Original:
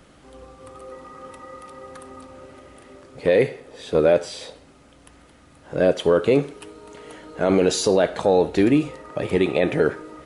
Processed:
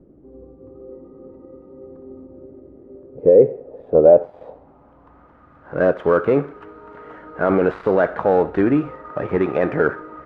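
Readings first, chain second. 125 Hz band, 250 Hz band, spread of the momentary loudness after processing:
0.0 dB, +0.5 dB, 15 LU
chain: gap after every zero crossing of 0.1 ms
low-pass filter sweep 370 Hz → 1,400 Hz, 0:02.76–0:05.72

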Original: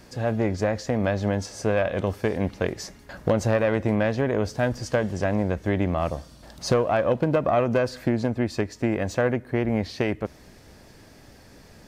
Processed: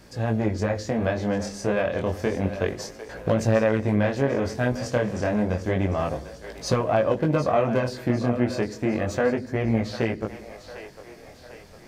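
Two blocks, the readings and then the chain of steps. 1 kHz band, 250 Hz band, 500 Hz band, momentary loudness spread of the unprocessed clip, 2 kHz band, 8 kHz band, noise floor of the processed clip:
0.0 dB, +0.5 dB, 0.0 dB, 6 LU, 0.0 dB, 0.0 dB, −47 dBFS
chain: echo with a time of its own for lows and highs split 420 Hz, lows 85 ms, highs 751 ms, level −12 dB
chorus effect 0.3 Hz, delay 17.5 ms, depth 7.1 ms
level +2.5 dB

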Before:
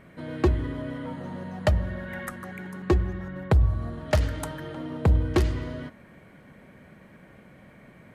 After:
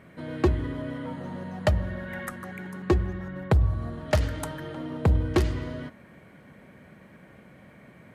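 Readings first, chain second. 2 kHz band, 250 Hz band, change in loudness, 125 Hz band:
0.0 dB, 0.0 dB, −1.0 dB, −1.0 dB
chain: high-pass filter 54 Hz

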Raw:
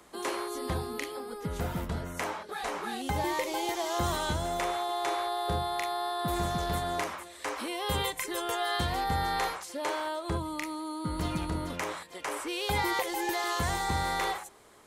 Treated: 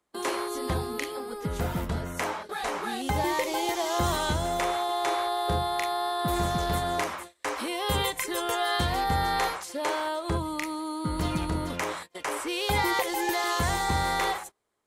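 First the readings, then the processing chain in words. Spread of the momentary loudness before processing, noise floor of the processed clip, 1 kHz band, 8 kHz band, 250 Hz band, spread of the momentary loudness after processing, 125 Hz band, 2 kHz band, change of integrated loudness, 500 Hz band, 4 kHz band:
6 LU, −52 dBFS, +3.5 dB, +3.5 dB, +3.5 dB, 6 LU, +3.5 dB, +3.5 dB, +3.5 dB, +3.5 dB, +3.5 dB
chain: noise gate −44 dBFS, range −26 dB
level +3.5 dB

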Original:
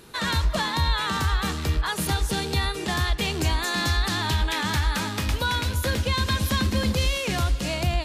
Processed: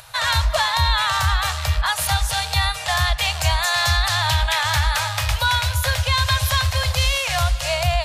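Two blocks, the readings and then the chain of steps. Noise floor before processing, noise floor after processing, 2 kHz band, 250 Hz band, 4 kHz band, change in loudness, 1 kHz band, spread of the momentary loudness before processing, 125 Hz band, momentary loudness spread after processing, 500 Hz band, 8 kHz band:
−32 dBFS, −29 dBFS, +6.5 dB, below −10 dB, +7.0 dB, +5.5 dB, +7.0 dB, 2 LU, +3.5 dB, 3 LU, +2.5 dB, +7.0 dB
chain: low-shelf EQ 130 Hz −10.5 dB
upward compression, threshold −48 dBFS
elliptic band-stop filter 120–620 Hz, stop band 40 dB
low-shelf EQ 460 Hz +5.5 dB
level +7 dB

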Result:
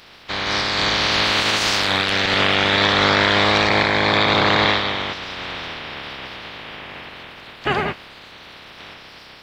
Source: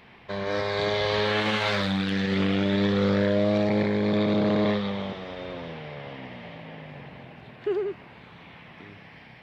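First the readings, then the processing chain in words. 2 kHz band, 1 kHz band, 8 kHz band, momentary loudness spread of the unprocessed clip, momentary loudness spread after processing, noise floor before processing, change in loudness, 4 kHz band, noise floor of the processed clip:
+13.0 dB, +12.5 dB, can't be measured, 18 LU, 19 LU, −49 dBFS, +8.0 dB, +14.5 dB, −43 dBFS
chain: ceiling on every frequency bin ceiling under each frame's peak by 26 dB
level +6.5 dB

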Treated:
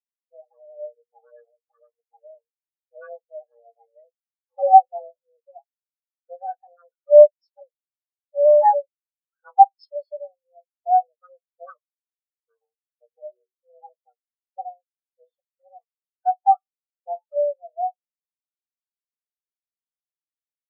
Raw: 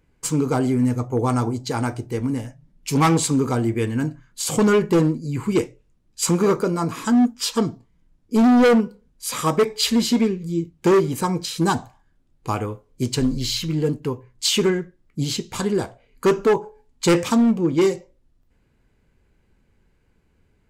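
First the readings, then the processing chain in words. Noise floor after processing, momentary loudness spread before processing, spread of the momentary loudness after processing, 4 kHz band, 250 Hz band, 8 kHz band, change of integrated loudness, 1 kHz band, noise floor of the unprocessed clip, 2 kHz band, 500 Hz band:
below −85 dBFS, 11 LU, 22 LU, below −35 dB, below −40 dB, below −40 dB, +3.5 dB, +7.5 dB, −63 dBFS, below −20 dB, +0.5 dB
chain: frequency shifter +350 Hz
auto-filter low-pass saw down 0.41 Hz 990–5,700 Hz
every bin expanded away from the loudest bin 4 to 1
level +1.5 dB

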